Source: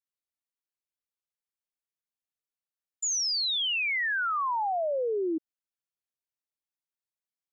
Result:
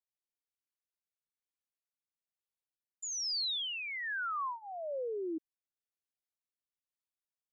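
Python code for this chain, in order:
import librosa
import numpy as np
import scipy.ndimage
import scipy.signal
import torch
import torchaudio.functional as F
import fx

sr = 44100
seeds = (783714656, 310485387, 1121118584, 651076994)

y = fx.rotary(x, sr, hz=1.1)
y = y * 10.0 ** (-5.5 / 20.0)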